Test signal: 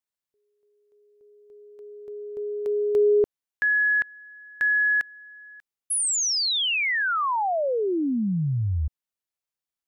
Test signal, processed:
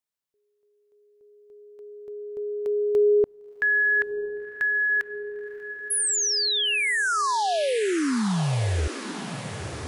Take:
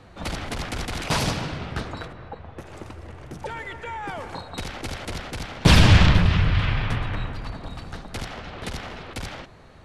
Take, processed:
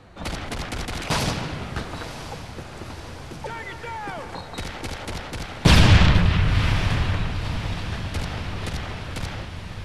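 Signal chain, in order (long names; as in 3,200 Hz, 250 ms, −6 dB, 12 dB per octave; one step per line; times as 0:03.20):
feedback delay with all-pass diffusion 1,018 ms, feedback 65%, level −11.5 dB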